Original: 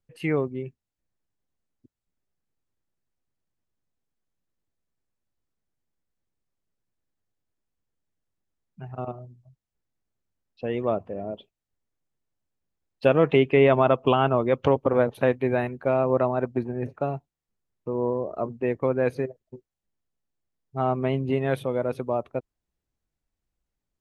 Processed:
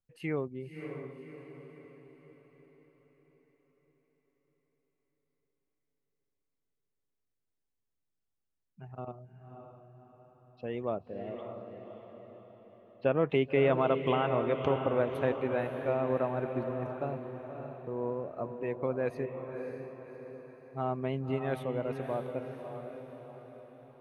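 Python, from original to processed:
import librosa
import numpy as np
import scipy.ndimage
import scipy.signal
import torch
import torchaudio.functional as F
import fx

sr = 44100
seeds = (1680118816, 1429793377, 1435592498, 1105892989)

y = fx.lowpass(x, sr, hz=2500.0, slope=12, at=(11.32, 13.3))
y = fx.echo_diffused(y, sr, ms=583, feedback_pct=49, wet_db=-7)
y = F.gain(torch.from_numpy(y), -8.5).numpy()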